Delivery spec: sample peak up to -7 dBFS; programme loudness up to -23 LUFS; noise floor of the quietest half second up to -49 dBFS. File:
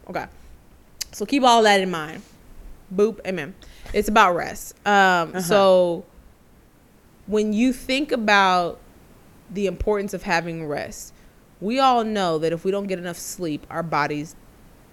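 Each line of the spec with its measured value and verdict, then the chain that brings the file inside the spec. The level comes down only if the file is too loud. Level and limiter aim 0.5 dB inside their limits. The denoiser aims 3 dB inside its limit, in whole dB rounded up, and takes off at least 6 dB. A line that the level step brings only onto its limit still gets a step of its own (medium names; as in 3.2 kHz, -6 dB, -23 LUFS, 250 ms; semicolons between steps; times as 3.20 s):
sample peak -2.5 dBFS: fail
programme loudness -21.0 LUFS: fail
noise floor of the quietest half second -53 dBFS: pass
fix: trim -2.5 dB; peak limiter -7.5 dBFS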